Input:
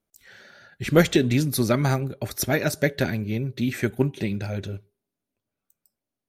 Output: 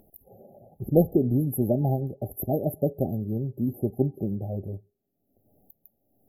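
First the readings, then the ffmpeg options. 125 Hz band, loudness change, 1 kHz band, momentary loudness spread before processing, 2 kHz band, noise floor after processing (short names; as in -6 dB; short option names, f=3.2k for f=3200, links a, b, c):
-2.0 dB, -2.5 dB, -6.0 dB, 11 LU, under -40 dB, -76 dBFS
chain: -af "afftfilt=real='re*(1-between(b*sr/4096,830,11000))':imag='im*(1-between(b*sr/4096,830,11000))':win_size=4096:overlap=0.75,acompressor=mode=upward:threshold=-38dB:ratio=2.5,volume=-2dB"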